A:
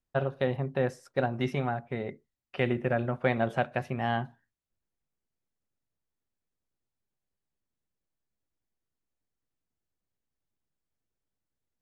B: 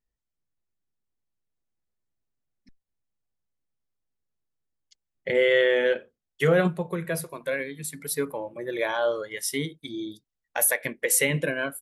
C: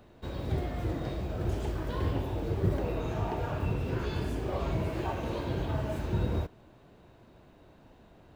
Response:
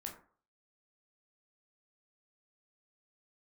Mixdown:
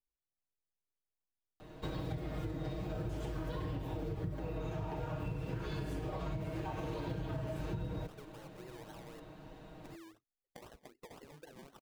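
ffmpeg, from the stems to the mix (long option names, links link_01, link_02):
-filter_complex "[1:a]acompressor=threshold=-24dB:ratio=6,aecho=1:1:2.5:0.75,acrusher=samples=26:mix=1:aa=0.000001:lfo=1:lforange=15.6:lforate=3.9,volume=-16.5dB,asplit=3[link_01][link_02][link_03];[link_01]atrim=end=9.2,asetpts=PTS-STARTPTS,afade=type=out:start_time=9.196:duration=0.004:curve=hsin[link_04];[link_02]atrim=start=9.2:end=9.78,asetpts=PTS-STARTPTS,volume=0[link_05];[link_03]atrim=start=9.78,asetpts=PTS-STARTPTS,afade=type=in:duration=0.004:curve=hsin[link_06];[link_04][link_05][link_06]concat=n=3:v=0:a=1[link_07];[2:a]aecho=1:1:6.4:0.83,acrossover=split=150[link_08][link_09];[link_09]acompressor=threshold=-34dB:ratio=4[link_10];[link_08][link_10]amix=inputs=2:normalize=0,adelay=1600,volume=2dB[link_11];[link_07]acompressor=threshold=-50dB:ratio=16,volume=0dB[link_12];[link_11][link_12]amix=inputs=2:normalize=0,acompressor=threshold=-36dB:ratio=6"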